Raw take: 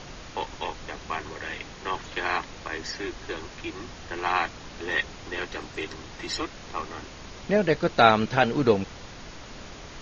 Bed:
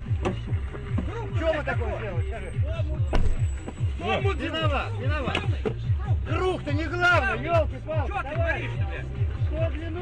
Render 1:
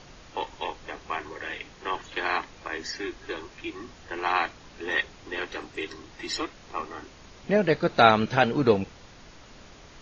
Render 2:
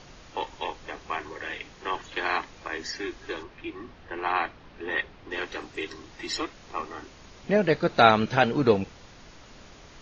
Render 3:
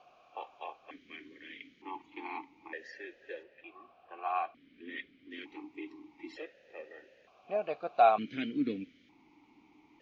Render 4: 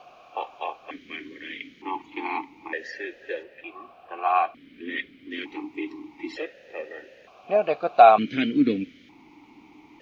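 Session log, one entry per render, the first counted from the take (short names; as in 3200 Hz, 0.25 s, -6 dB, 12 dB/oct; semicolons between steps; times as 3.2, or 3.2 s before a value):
noise print and reduce 7 dB
3.43–5.31 air absorption 220 m
vowel sequencer 1.1 Hz
gain +11.5 dB; limiter -3 dBFS, peak gain reduction 2 dB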